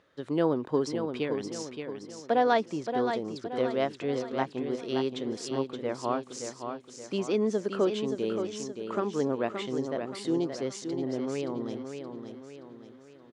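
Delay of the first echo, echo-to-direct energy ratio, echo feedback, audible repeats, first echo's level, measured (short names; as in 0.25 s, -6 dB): 0.573 s, -6.0 dB, 45%, 5, -7.0 dB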